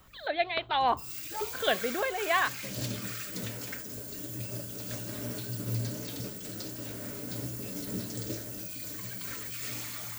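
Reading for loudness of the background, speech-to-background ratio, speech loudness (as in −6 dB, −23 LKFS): −36.5 LKFS, 6.5 dB, −30.0 LKFS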